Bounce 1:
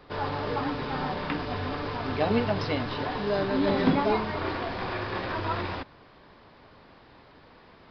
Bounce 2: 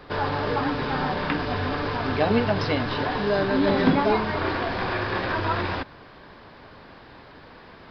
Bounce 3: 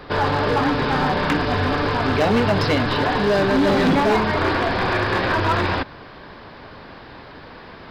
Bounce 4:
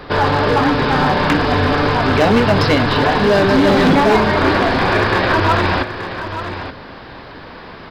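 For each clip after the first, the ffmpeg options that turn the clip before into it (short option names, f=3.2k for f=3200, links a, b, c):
-filter_complex "[0:a]equalizer=f=1.6k:w=7.4:g=4.5,asplit=2[a][b];[b]acompressor=threshold=-33dB:ratio=6,volume=-3dB[c];[a][c]amix=inputs=2:normalize=0,volume=2dB"
-af "volume=20dB,asoftclip=hard,volume=-20dB,volume=6.5dB"
-af "aecho=1:1:877:0.299,volume=5dB"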